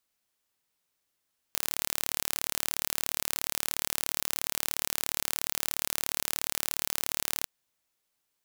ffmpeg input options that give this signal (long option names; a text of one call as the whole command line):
ffmpeg -f lavfi -i "aevalsrc='0.75*eq(mod(n,1192),0)':duration=5.9:sample_rate=44100" out.wav